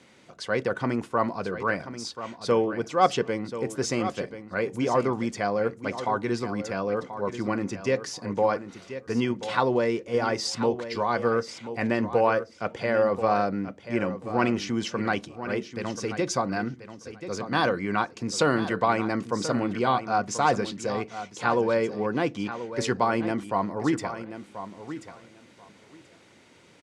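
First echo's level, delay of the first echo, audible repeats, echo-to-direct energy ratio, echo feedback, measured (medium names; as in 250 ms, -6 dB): -11.5 dB, 1034 ms, 2, -11.5 dB, 16%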